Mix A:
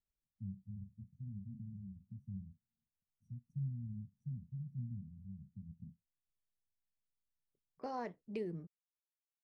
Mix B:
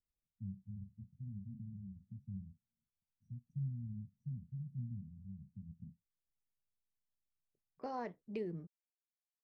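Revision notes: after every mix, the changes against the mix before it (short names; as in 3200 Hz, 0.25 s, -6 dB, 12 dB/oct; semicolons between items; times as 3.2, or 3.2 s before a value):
master: add air absorption 54 m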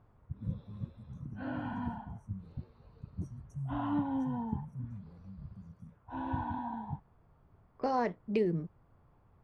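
first voice: remove air absorption 480 m; second voice +11.0 dB; background: unmuted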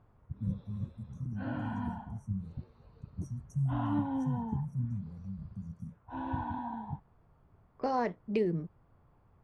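first voice +8.0 dB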